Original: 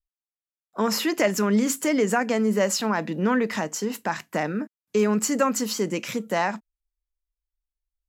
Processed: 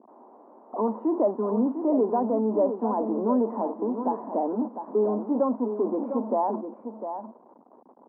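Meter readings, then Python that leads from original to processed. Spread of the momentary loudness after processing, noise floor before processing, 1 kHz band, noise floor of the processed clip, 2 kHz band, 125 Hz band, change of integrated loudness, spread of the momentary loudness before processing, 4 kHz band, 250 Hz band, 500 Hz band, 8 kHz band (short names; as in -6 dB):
11 LU, under -85 dBFS, -0.5 dB, -55 dBFS, under -30 dB, n/a, -2.0 dB, 7 LU, under -40 dB, -1.5 dB, 0.0 dB, under -40 dB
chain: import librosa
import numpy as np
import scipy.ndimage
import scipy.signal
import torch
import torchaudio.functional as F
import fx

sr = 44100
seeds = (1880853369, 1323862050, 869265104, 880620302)

y = x + 0.5 * 10.0 ** (-22.5 / 20.0) * np.sign(x)
y = scipy.signal.sosfilt(scipy.signal.cheby1(4, 1.0, [230.0, 1000.0], 'bandpass', fs=sr, output='sos'), y)
y = y + 10.0 ** (-8.5 / 20.0) * np.pad(y, (int(702 * sr / 1000.0), 0))[:len(y)]
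y = y * 10.0 ** (-2.5 / 20.0)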